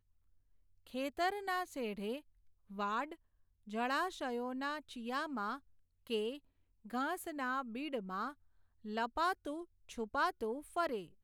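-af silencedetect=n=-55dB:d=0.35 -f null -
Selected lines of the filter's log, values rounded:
silence_start: 0.00
silence_end: 0.87 | silence_duration: 0.87
silence_start: 2.21
silence_end: 2.70 | silence_duration: 0.49
silence_start: 3.15
silence_end: 3.67 | silence_duration: 0.52
silence_start: 5.59
silence_end: 6.07 | silence_duration: 0.48
silence_start: 6.39
silence_end: 6.85 | silence_duration: 0.46
silence_start: 8.33
silence_end: 8.84 | silence_duration: 0.51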